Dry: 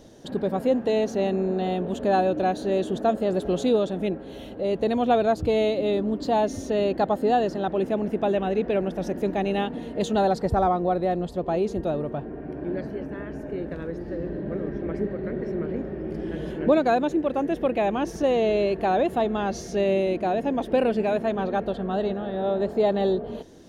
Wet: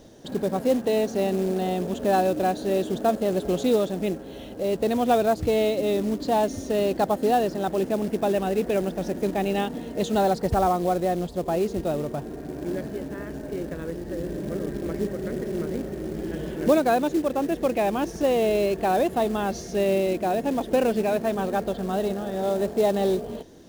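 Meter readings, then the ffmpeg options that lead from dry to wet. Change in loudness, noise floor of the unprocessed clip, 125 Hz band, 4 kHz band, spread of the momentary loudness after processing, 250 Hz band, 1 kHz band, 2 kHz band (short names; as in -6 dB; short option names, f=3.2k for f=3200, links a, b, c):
0.0 dB, -38 dBFS, 0.0 dB, +1.0 dB, 10 LU, 0.0 dB, 0.0 dB, +0.5 dB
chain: -af "acrusher=bits=5:mode=log:mix=0:aa=0.000001"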